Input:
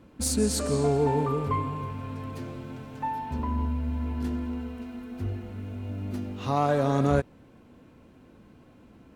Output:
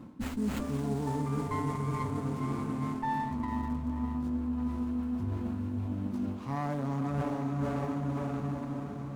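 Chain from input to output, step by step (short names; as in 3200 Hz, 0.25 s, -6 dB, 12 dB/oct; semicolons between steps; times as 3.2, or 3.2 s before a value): in parallel at -9 dB: Schmitt trigger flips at -22.5 dBFS; on the sum: ten-band EQ 125 Hz +9 dB, 250 Hz +11 dB, 500 Hz -4 dB, 1000 Hz +9 dB, 2000 Hz -5 dB, 8000 Hz +4 dB; diffused feedback echo 0.516 s, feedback 43%, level -5.5 dB; reverse; compressor 12:1, threshold -28 dBFS, peak gain reduction 19 dB; reverse; low shelf 210 Hz -4.5 dB; de-hum 62.62 Hz, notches 35; running maximum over 9 samples; gain +1.5 dB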